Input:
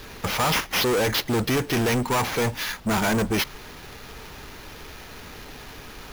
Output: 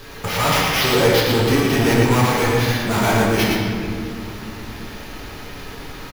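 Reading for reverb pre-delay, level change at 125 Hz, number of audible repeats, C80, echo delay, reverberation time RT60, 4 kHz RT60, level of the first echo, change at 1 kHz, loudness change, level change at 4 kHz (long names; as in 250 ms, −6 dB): 7 ms, +9.0 dB, 1, −0.5 dB, 113 ms, 2.3 s, 1.4 s, −3.5 dB, +6.0 dB, +6.0 dB, +5.5 dB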